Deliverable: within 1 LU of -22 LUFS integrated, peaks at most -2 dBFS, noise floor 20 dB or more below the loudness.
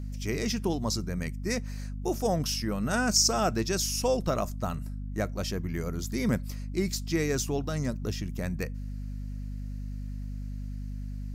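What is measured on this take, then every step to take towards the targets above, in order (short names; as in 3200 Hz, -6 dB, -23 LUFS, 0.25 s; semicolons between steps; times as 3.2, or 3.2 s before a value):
hum 50 Hz; harmonics up to 250 Hz; hum level -33 dBFS; loudness -30.5 LUFS; peak -12.0 dBFS; loudness target -22.0 LUFS
-> de-hum 50 Hz, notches 5; gain +8.5 dB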